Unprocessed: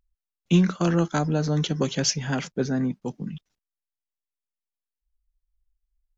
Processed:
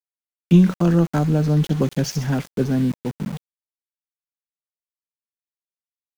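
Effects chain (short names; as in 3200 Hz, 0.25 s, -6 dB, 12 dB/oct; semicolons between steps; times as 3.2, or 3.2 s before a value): tilt -2.5 dB/oct; thin delay 64 ms, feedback 40%, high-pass 3500 Hz, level -6.5 dB; sample gate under -31 dBFS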